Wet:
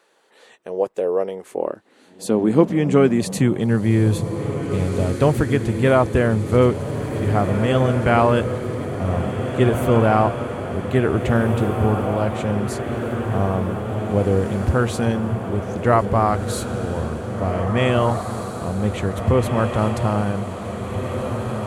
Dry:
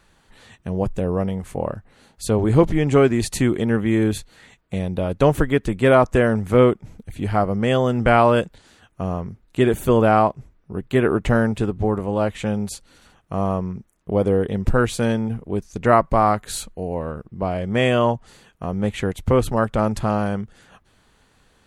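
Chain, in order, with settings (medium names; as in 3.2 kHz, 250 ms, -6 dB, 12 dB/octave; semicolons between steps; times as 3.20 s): echo that smears into a reverb 1889 ms, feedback 67%, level -7 dB; high-pass sweep 450 Hz -> 77 Hz, 1.18–4.66 s; trim -2 dB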